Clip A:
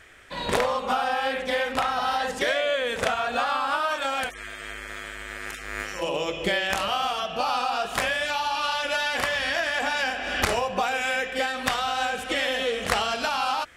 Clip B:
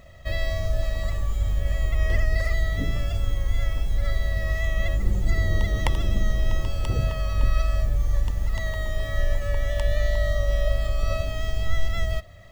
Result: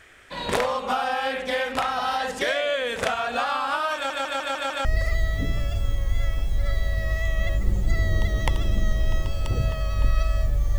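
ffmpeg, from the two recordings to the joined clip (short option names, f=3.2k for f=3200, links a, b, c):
-filter_complex "[0:a]apad=whole_dur=10.78,atrim=end=10.78,asplit=6[a][b][c][d][e][f];[a]atrim=end=4.102[g];[b]atrim=start=3.948:end=4.102[h];[c]atrim=start=3.948:end=4.102[i];[d]atrim=start=3.948:end=4.102[j];[e]atrim=start=3.948:end=4.102[k];[f]atrim=start=3.948:end=4.102[l];[1:a]atrim=start=2.238:end=8.17[m];[g][h]acrossfade=d=0.004:c1=hsin:c2=hsin[n];[n][i]acrossfade=d=0.004:c1=hsin:c2=hsin[o];[o][j]acrossfade=d=0.004:c1=hsin:c2=hsin[p];[p][k]acrossfade=d=0.004:c1=hsin:c2=hsin[q];[q][l]acrossfade=d=0.004:c1=hsin:c2=hsin[r];[r][m]acrossfade=d=0.004:c1=hsin:c2=hsin"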